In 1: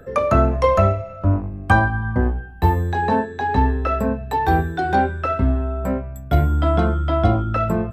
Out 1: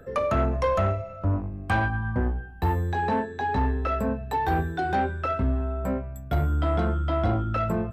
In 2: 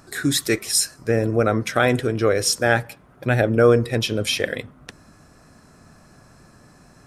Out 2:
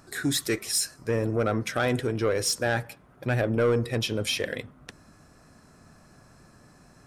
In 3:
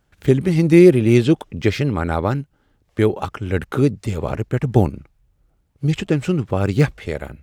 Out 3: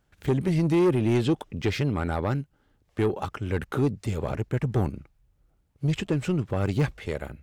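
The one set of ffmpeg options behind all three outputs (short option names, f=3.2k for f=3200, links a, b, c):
-filter_complex "[0:a]asplit=2[a][b];[b]alimiter=limit=-9.5dB:level=0:latency=1,volume=-3dB[c];[a][c]amix=inputs=2:normalize=0,asoftclip=type=tanh:threshold=-7.5dB,volume=-9dB"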